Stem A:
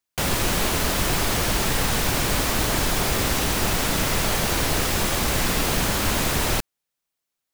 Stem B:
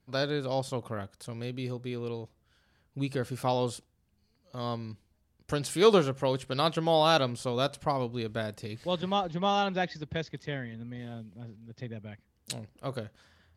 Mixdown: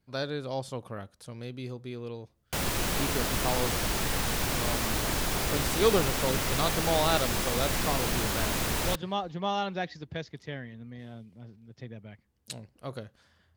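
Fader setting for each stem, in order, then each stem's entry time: −7.0, −3.0 decibels; 2.35, 0.00 seconds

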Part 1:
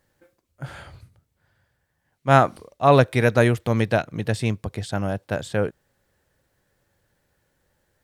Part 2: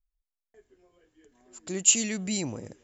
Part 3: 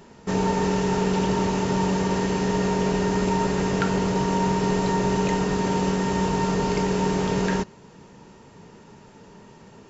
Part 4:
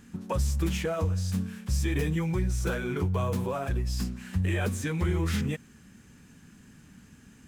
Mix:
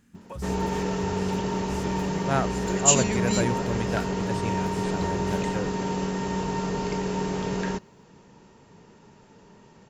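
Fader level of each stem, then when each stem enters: −10.5, +1.0, −5.0, −9.5 decibels; 0.00, 1.00, 0.15, 0.00 seconds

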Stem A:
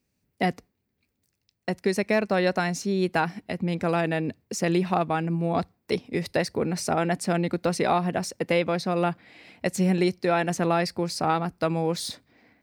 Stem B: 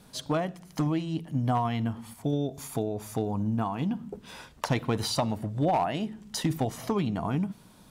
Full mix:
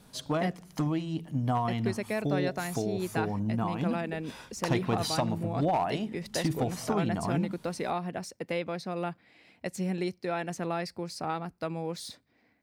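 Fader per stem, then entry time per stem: −9.0, −2.0 decibels; 0.00, 0.00 seconds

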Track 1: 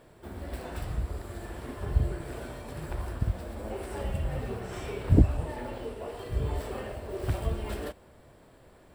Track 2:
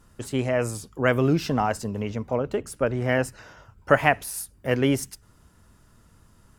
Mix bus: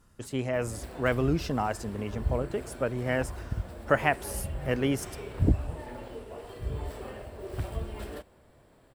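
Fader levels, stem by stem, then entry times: −4.0, −5.5 decibels; 0.30, 0.00 seconds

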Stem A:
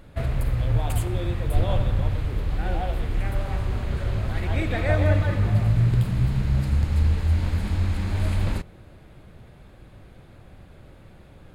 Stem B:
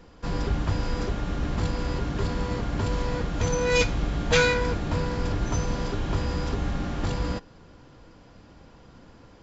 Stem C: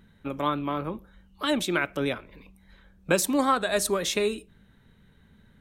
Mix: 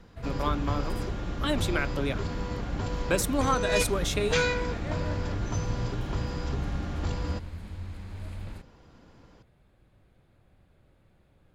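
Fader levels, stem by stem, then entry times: −15.0, −5.0, −3.5 decibels; 0.00, 0.00, 0.00 seconds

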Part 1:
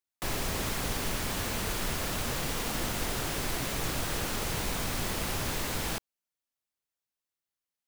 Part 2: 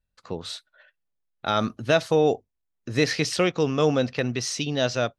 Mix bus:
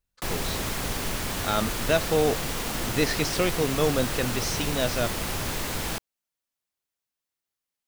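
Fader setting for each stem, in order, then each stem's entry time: +2.5, −3.0 decibels; 0.00, 0.00 seconds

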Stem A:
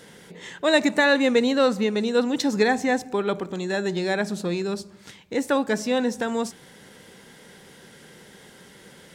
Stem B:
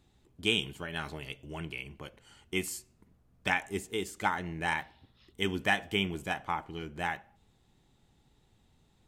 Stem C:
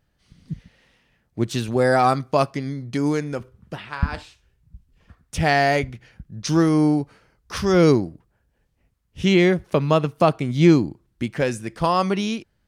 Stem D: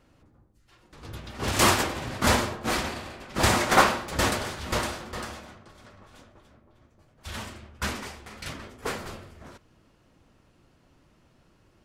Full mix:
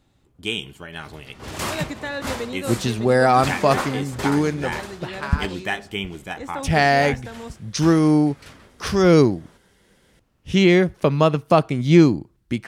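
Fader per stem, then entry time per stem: −11.0, +2.0, +1.5, −7.5 decibels; 1.05, 0.00, 1.30, 0.00 seconds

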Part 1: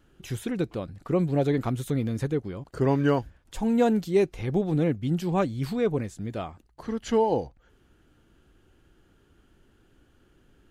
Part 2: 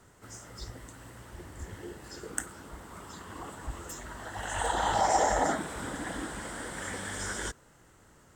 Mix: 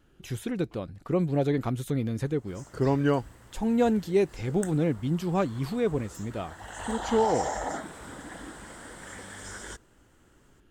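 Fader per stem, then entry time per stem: −1.5, −5.5 decibels; 0.00, 2.25 seconds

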